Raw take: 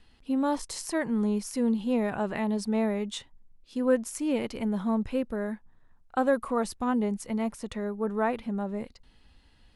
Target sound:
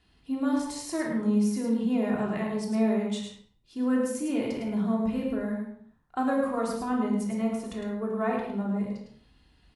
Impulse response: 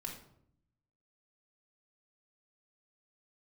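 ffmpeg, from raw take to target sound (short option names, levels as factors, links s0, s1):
-filter_complex "[0:a]highpass=45,aecho=1:1:106:0.501[s0];[1:a]atrim=start_sample=2205,afade=t=out:st=0.4:d=0.01,atrim=end_sample=18081[s1];[s0][s1]afir=irnorm=-1:irlink=0"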